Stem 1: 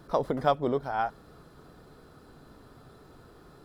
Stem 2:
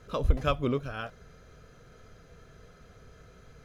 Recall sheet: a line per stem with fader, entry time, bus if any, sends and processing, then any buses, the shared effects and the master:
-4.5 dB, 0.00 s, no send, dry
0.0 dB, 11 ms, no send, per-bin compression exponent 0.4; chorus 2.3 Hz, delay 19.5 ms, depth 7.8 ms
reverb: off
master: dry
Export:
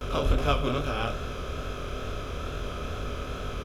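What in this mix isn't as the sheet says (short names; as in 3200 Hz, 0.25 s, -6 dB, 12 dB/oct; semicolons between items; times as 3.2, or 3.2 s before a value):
stem 1 -4.5 dB -> -12.0 dB; master: extra high shelf 2900 Hz +8.5 dB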